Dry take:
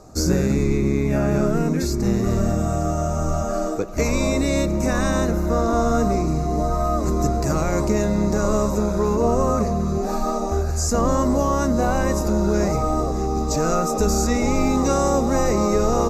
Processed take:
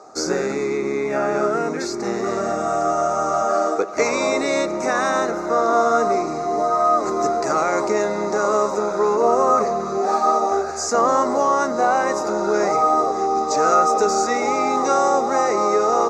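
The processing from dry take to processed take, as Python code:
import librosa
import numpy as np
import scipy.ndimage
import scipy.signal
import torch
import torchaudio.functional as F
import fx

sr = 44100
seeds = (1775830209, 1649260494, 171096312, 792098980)

y = fx.rider(x, sr, range_db=10, speed_s=2.0)
y = fx.cabinet(y, sr, low_hz=400.0, low_slope=12, high_hz=8300.0, hz=(410.0, 790.0, 1300.0, 2000.0, 2900.0, 7600.0), db=(5, 7, 8, 4, -4, -4))
y = y * librosa.db_to_amplitude(1.5)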